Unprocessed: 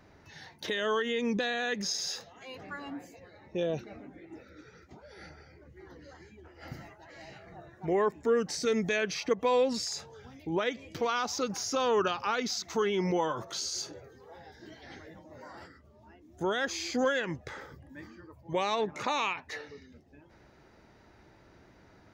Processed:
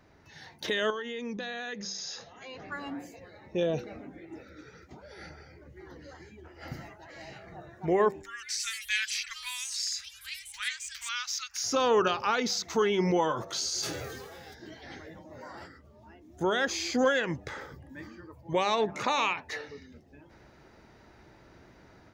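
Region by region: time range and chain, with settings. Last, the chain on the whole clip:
0.9–2.72 Chebyshev low-pass 7000 Hz, order 8 + compressor 2:1, threshold -43 dBFS
8.22–11.64 inverse Chebyshev band-stop 160–510 Hz, stop band 70 dB + echoes that change speed 0.154 s, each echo +4 st, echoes 3, each echo -6 dB
13.82–14.53 spectral whitening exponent 0.6 + notch 930 Hz, Q 5.1 + sustainer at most 29 dB/s
whole clip: de-hum 97.71 Hz, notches 9; AGC gain up to 5 dB; gain -2 dB

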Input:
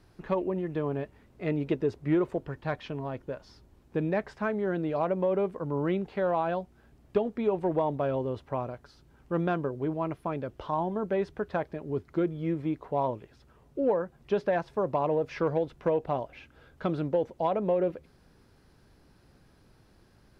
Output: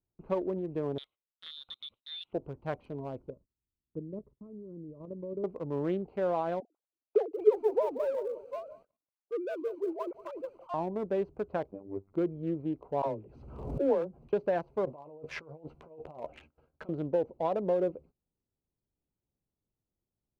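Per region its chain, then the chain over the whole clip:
0.98–2.33 HPF 210 Hz + inverted band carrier 3900 Hz + compressor 3:1, threshold -34 dBFS
3.3–5.44 level quantiser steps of 9 dB + running mean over 58 samples
6.6–10.74 sine-wave speech + HPF 220 Hz + lo-fi delay 0.183 s, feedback 55%, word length 7-bit, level -11 dB
11.71–12.13 LPF 1800 Hz + robotiser 97.9 Hz
13.02–14.33 dispersion lows, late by 52 ms, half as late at 380 Hz + backwards sustainer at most 44 dB/s
14.85–16.89 negative-ratio compressor -38 dBFS + low shelf 360 Hz -8 dB + doubler 13 ms -6 dB
whole clip: Wiener smoothing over 25 samples; gate -51 dBFS, range -23 dB; dynamic EQ 470 Hz, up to +5 dB, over -40 dBFS, Q 0.77; gain -6 dB

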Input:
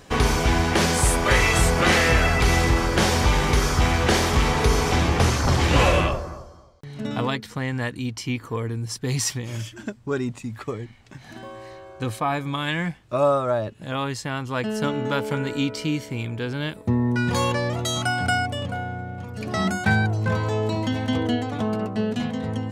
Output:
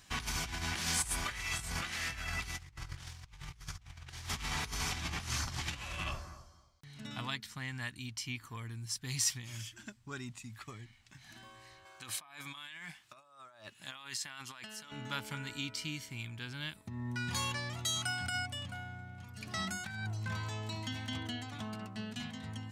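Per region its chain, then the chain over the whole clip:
2.58–4.29 resonant low shelf 160 Hz +7 dB, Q 3 + Doppler distortion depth 0.35 ms
11.85–14.92 HPF 660 Hz 6 dB/oct + negative-ratio compressor -37 dBFS
whole clip: bell 480 Hz -10 dB 0.39 oct; negative-ratio compressor -22 dBFS, ratio -0.5; passive tone stack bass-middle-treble 5-5-5; gain -2.5 dB

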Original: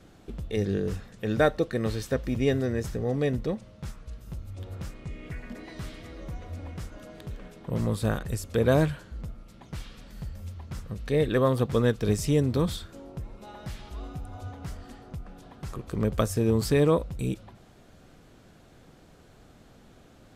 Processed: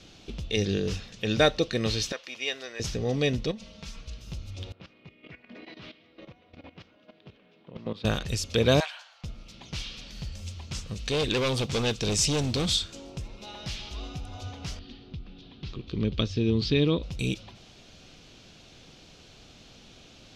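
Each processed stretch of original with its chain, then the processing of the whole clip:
2.12–2.8 HPF 900 Hz + high shelf 3100 Hz -7.5 dB
3.51–4.01 compressor 5:1, threshold -39 dBFS + comb 4.4 ms, depth 73%
4.72–8.05 HPF 190 Hz + level quantiser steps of 15 dB + air absorption 340 m
8.8–9.24 elliptic high-pass 730 Hz, stop band 60 dB + tilt shelf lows +6 dB, about 1500 Hz
10.32–13.28 bell 8000 Hz +8.5 dB 0.56 oct + modulation noise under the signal 34 dB + hard clip -24 dBFS
14.79–17.03 ladder low-pass 4500 Hz, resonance 45% + resonant low shelf 460 Hz +7.5 dB, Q 1.5
whole clip: LPF 11000 Hz 12 dB/oct; band shelf 3900 Hz +13 dB

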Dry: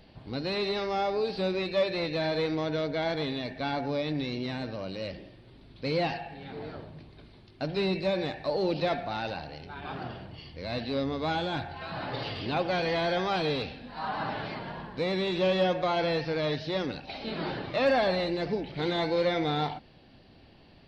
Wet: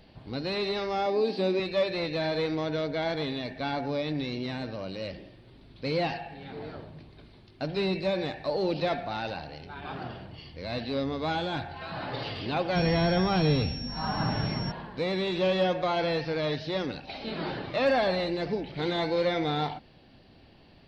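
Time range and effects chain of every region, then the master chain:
1.06–1.6 resonant high-pass 250 Hz, resonance Q 2.7 + notch 1400 Hz, Q 6.8
12.75–14.7 tone controls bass +14 dB, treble -5 dB + whine 5500 Hz -38 dBFS
whole clip: dry

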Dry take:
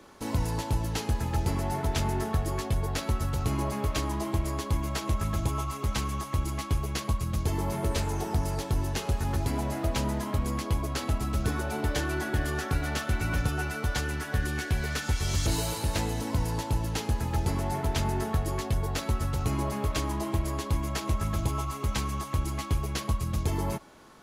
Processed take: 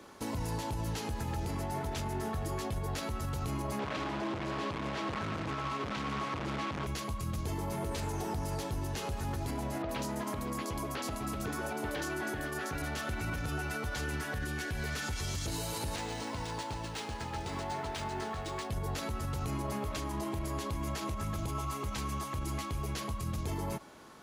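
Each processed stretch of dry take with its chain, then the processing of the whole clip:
3.79–6.87 compressor 2.5:1, threshold -30 dBFS + companded quantiser 2-bit + BPF 130–3100 Hz
9.82–12.82 bell 62 Hz -9.5 dB 2.1 oct + bands offset in time lows, highs 70 ms, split 4100 Hz
15.96–18.7 low shelf 430 Hz -10.5 dB + decimation joined by straight lines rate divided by 3×
whole clip: HPF 68 Hz 6 dB/oct; limiter -27.5 dBFS

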